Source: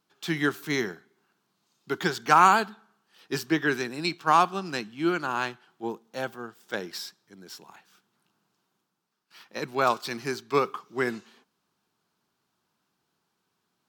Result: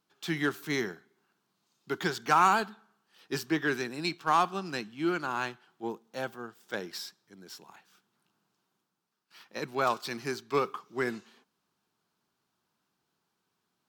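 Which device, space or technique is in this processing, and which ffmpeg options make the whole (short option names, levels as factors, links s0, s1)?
parallel distortion: -filter_complex "[0:a]asplit=2[s0][s1];[s1]asoftclip=type=hard:threshold=0.075,volume=0.501[s2];[s0][s2]amix=inputs=2:normalize=0,volume=0.473"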